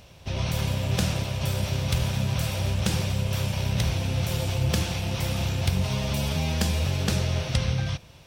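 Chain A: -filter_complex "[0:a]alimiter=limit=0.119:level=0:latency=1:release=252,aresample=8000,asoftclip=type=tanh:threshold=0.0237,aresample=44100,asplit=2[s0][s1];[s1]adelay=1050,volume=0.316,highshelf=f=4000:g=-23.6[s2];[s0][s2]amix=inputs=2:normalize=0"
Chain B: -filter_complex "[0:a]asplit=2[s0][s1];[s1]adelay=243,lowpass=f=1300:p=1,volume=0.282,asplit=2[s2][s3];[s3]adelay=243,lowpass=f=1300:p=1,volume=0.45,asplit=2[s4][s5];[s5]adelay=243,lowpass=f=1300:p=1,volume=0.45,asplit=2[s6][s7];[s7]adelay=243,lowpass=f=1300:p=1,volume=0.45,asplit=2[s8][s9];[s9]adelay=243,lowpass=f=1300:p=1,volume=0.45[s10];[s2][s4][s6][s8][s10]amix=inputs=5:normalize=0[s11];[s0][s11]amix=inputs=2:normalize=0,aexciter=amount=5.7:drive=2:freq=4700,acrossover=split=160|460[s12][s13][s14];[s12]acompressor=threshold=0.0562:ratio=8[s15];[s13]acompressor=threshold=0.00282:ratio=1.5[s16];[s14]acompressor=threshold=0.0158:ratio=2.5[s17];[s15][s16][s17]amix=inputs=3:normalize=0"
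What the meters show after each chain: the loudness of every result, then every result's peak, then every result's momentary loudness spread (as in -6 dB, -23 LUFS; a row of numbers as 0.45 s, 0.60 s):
-36.0 LUFS, -28.5 LUFS; -27.0 dBFS, -13.0 dBFS; 1 LU, 2 LU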